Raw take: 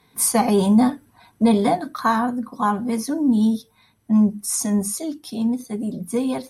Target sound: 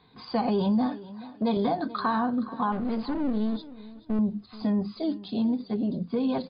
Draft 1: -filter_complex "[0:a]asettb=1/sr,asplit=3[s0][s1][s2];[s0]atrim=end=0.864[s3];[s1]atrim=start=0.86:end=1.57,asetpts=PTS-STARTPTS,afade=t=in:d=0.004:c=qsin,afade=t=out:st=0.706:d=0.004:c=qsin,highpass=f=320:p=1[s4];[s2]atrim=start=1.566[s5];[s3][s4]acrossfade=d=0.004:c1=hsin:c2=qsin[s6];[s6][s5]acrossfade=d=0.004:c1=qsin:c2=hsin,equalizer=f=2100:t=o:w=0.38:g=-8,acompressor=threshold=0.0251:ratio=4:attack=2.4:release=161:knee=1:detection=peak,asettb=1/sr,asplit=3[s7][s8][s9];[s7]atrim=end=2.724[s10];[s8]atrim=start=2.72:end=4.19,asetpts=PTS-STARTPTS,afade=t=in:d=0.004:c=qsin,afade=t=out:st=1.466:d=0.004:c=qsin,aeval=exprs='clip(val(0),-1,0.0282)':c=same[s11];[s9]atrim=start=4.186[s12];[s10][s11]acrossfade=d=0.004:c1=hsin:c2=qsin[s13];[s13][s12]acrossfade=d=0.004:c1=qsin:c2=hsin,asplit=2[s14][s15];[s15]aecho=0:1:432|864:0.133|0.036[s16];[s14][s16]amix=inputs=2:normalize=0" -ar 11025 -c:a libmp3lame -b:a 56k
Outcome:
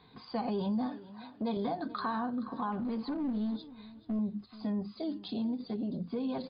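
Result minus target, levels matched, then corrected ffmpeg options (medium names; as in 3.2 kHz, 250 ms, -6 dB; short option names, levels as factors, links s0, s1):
compression: peak gain reduction +8 dB
-filter_complex "[0:a]asettb=1/sr,asplit=3[s0][s1][s2];[s0]atrim=end=0.864[s3];[s1]atrim=start=0.86:end=1.57,asetpts=PTS-STARTPTS,afade=t=in:d=0.004:c=qsin,afade=t=out:st=0.706:d=0.004:c=qsin,highpass=f=320:p=1[s4];[s2]atrim=start=1.566[s5];[s3][s4]acrossfade=d=0.004:c1=hsin:c2=qsin[s6];[s6][s5]acrossfade=d=0.004:c1=qsin:c2=hsin,equalizer=f=2100:t=o:w=0.38:g=-8,acompressor=threshold=0.0841:ratio=4:attack=2.4:release=161:knee=1:detection=peak,asettb=1/sr,asplit=3[s7][s8][s9];[s7]atrim=end=2.724[s10];[s8]atrim=start=2.72:end=4.19,asetpts=PTS-STARTPTS,afade=t=in:d=0.004:c=qsin,afade=t=out:st=1.466:d=0.004:c=qsin,aeval=exprs='clip(val(0),-1,0.0282)':c=same[s11];[s9]atrim=start=4.186[s12];[s10][s11]acrossfade=d=0.004:c1=hsin:c2=qsin[s13];[s13][s12]acrossfade=d=0.004:c1=qsin:c2=hsin,asplit=2[s14][s15];[s15]aecho=0:1:432|864:0.133|0.036[s16];[s14][s16]amix=inputs=2:normalize=0" -ar 11025 -c:a libmp3lame -b:a 56k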